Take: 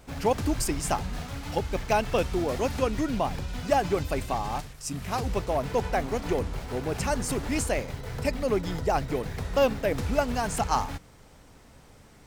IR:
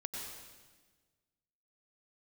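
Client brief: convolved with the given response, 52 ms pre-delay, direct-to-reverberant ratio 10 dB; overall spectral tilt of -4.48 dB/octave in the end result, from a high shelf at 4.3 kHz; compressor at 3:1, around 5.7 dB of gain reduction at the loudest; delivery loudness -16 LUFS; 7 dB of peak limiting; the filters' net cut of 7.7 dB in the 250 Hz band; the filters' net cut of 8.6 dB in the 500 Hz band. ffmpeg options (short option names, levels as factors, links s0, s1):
-filter_complex "[0:a]equalizer=f=250:t=o:g=-7.5,equalizer=f=500:t=o:g=-9,highshelf=f=4300:g=4,acompressor=threshold=0.0316:ratio=3,alimiter=limit=0.0631:level=0:latency=1,asplit=2[s0][s1];[1:a]atrim=start_sample=2205,adelay=52[s2];[s1][s2]afir=irnorm=-1:irlink=0,volume=0.316[s3];[s0][s3]amix=inputs=2:normalize=0,volume=9.44"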